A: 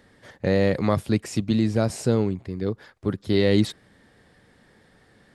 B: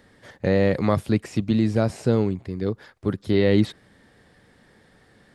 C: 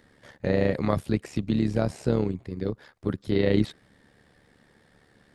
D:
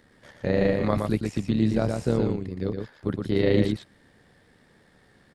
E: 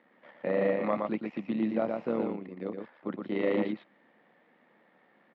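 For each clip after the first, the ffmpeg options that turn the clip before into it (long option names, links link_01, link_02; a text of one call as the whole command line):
ffmpeg -i in.wav -filter_complex "[0:a]acrossover=split=3500[link_01][link_02];[link_02]acompressor=threshold=-44dB:ratio=4:attack=1:release=60[link_03];[link_01][link_03]amix=inputs=2:normalize=0,volume=1dB" out.wav
ffmpeg -i in.wav -af "tremolo=f=72:d=0.667,volume=-1dB" out.wav
ffmpeg -i in.wav -af "aecho=1:1:118:0.596" out.wav
ffmpeg -i in.wav -af "volume=12.5dB,asoftclip=hard,volume=-12.5dB,highpass=frequency=240:width=0.5412,highpass=frequency=240:width=1.3066,equalizer=frequency=280:width_type=q:width=4:gain=-5,equalizer=frequency=410:width_type=q:width=4:gain=-9,equalizer=frequency=1600:width_type=q:width=4:gain=-8,lowpass=frequency=2500:width=0.5412,lowpass=frequency=2500:width=1.3066" out.wav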